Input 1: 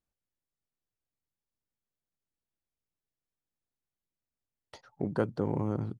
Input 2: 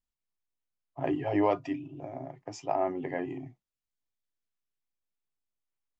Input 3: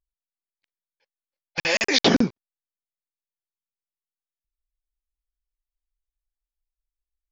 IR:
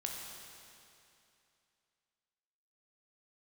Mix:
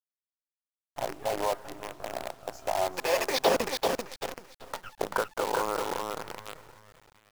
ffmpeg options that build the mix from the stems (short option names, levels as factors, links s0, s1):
-filter_complex "[0:a]highpass=f=180:w=0.5412,highpass=f=180:w=1.3066,equalizer=f=1500:t=o:w=1.1:g=14.5,acompressor=threshold=0.0224:ratio=16,volume=1.41,asplit=2[s0][s1];[s1]volume=0.668[s2];[1:a]highshelf=f=6600:g=5.5,alimiter=limit=0.0708:level=0:latency=1:release=360,volume=0.631,asplit=3[s3][s4][s5];[s4]volume=0.251[s6];[s5]volume=0.335[s7];[2:a]adelay=1400,volume=0.355,asplit=2[s8][s9];[s9]volume=0.631[s10];[3:a]atrim=start_sample=2205[s11];[s6][s11]afir=irnorm=-1:irlink=0[s12];[s2][s7][s10]amix=inputs=3:normalize=0,aecho=0:1:387|774|1161|1548|1935:1|0.38|0.144|0.0549|0.0209[s13];[s0][s3][s8][s12][s13]amix=inputs=5:normalize=0,equalizer=f=125:t=o:w=1:g=-6,equalizer=f=250:t=o:w=1:g=-11,equalizer=f=500:t=o:w=1:g=9,equalizer=f=1000:t=o:w=1:g=10,equalizer=f=2000:t=o:w=1:g=-4,equalizer=f=4000:t=o:w=1:g=-3,acrusher=bits=6:dc=4:mix=0:aa=0.000001"